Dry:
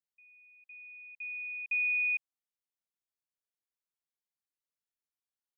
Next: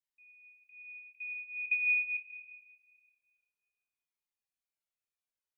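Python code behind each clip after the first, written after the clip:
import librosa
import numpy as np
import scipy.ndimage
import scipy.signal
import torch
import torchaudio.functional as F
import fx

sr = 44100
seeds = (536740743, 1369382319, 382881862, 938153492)

y = fx.peak_eq(x, sr, hz=2400.0, db=7.0, octaves=0.32)
y = fx.rev_schroeder(y, sr, rt60_s=1.9, comb_ms=25, drr_db=6.5)
y = fx.comb_cascade(y, sr, direction='falling', hz=0.48)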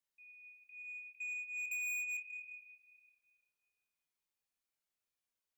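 y = 10.0 ** (-39.0 / 20.0) * np.tanh(x / 10.0 ** (-39.0 / 20.0))
y = y * 10.0 ** (1.5 / 20.0)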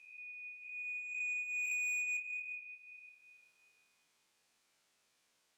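y = fx.spec_swells(x, sr, rise_s=0.76)
y = scipy.signal.sosfilt(scipy.signal.butter(2, 8200.0, 'lowpass', fs=sr, output='sos'), y)
y = fx.band_squash(y, sr, depth_pct=40)
y = y * 10.0 ** (3.5 / 20.0)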